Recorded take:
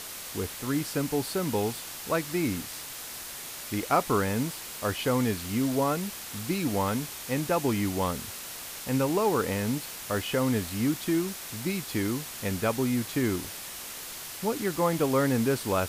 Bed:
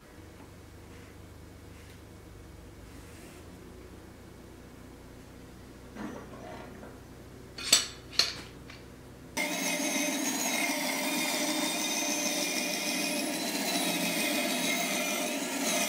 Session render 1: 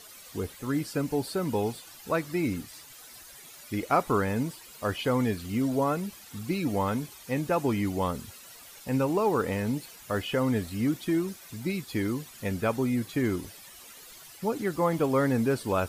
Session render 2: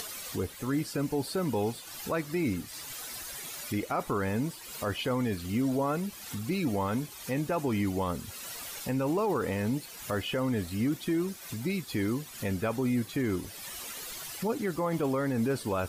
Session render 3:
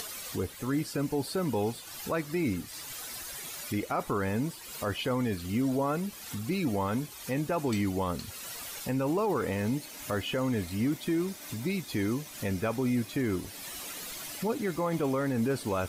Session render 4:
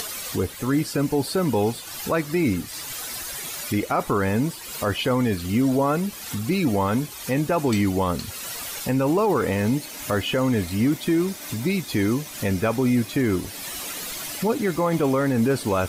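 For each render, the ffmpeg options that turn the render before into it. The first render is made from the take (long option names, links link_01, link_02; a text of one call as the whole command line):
ffmpeg -i in.wav -af "afftdn=noise_reduction=13:noise_floor=-40" out.wav
ffmpeg -i in.wav -af "alimiter=limit=-21dB:level=0:latency=1:release=16,acompressor=mode=upward:threshold=-31dB:ratio=2.5" out.wav
ffmpeg -i in.wav -i bed.wav -filter_complex "[1:a]volume=-22dB[link_01];[0:a][link_01]amix=inputs=2:normalize=0" out.wav
ffmpeg -i in.wav -af "volume=8dB" out.wav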